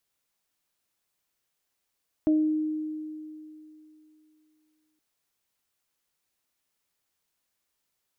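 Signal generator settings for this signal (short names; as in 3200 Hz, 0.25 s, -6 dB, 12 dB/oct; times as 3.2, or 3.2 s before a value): additive tone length 2.72 s, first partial 309 Hz, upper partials -11.5 dB, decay 2.91 s, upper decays 0.42 s, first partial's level -18 dB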